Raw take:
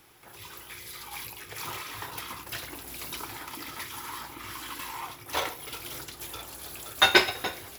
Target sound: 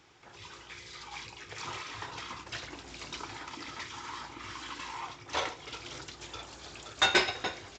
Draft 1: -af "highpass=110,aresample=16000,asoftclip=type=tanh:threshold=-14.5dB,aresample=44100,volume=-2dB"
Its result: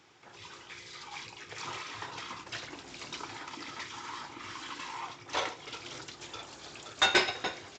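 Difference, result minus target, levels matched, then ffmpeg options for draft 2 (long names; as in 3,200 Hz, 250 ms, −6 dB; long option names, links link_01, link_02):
125 Hz band −3.0 dB
-af "highpass=29,aresample=16000,asoftclip=type=tanh:threshold=-14.5dB,aresample=44100,volume=-2dB"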